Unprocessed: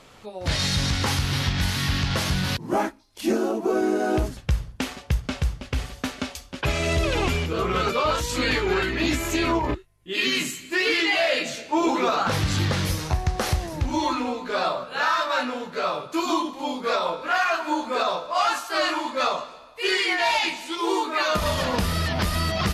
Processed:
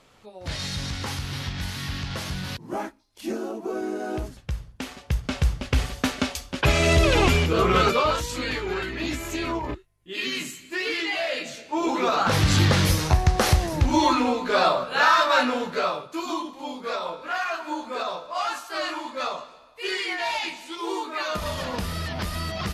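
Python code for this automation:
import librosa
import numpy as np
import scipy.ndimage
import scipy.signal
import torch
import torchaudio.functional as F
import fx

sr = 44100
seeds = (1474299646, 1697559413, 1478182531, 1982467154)

y = fx.gain(x, sr, db=fx.line((4.73, -7.0), (5.6, 4.5), (7.83, 4.5), (8.42, -5.5), (11.64, -5.5), (12.51, 4.5), (15.7, 4.5), (16.1, -5.5)))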